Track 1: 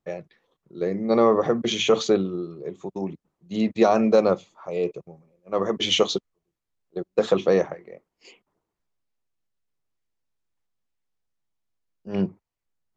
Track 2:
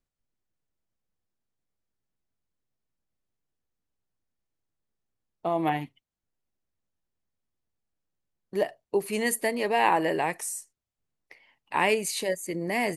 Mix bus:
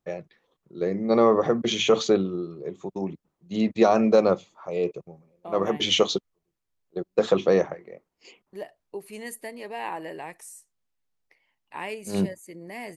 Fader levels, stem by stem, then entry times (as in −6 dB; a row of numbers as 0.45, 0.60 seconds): −0.5, −10.5 decibels; 0.00, 0.00 seconds